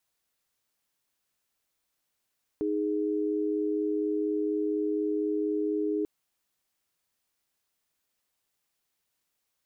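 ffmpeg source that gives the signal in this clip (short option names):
-f lavfi -i "aevalsrc='0.0376*(sin(2*PI*311.13*t)+sin(2*PI*415.3*t))':d=3.44:s=44100"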